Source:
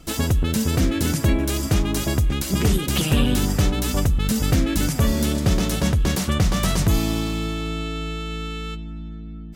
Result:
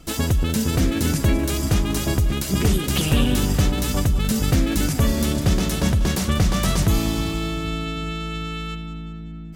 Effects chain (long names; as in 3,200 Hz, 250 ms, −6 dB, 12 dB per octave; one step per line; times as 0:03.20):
echo with a time of its own for lows and highs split 420 Hz, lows 387 ms, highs 191 ms, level −13 dB